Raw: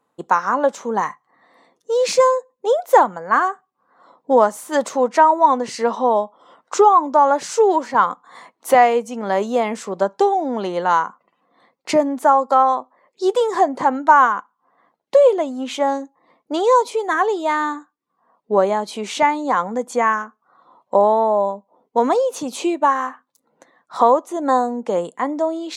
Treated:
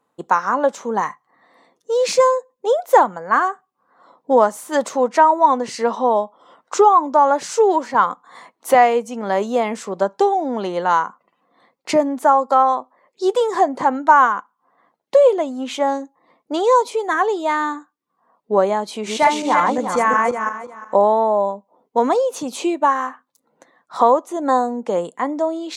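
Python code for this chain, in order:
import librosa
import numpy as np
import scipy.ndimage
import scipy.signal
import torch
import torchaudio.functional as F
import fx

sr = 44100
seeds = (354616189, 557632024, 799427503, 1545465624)

y = fx.reverse_delay_fb(x, sr, ms=178, feedback_pct=43, wet_db=-1, at=(18.89, 20.95))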